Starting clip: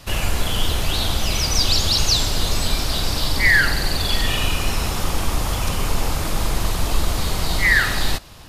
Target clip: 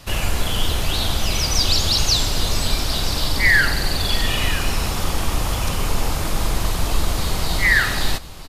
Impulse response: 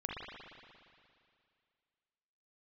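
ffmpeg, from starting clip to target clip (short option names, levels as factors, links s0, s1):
-af "aecho=1:1:979:0.15"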